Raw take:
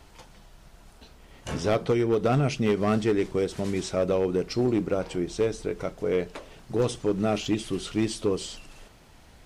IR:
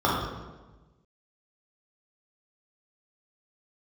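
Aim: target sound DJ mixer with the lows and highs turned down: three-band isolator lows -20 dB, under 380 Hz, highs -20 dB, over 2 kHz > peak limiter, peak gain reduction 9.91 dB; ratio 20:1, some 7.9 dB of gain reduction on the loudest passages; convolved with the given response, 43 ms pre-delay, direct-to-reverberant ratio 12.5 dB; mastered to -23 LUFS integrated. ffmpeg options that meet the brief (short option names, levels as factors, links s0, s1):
-filter_complex "[0:a]acompressor=threshold=0.0447:ratio=20,asplit=2[s0][s1];[1:a]atrim=start_sample=2205,adelay=43[s2];[s1][s2]afir=irnorm=-1:irlink=0,volume=0.0299[s3];[s0][s3]amix=inputs=2:normalize=0,acrossover=split=380 2000:gain=0.1 1 0.1[s4][s5][s6];[s4][s5][s6]amix=inputs=3:normalize=0,volume=8.41,alimiter=limit=0.237:level=0:latency=1"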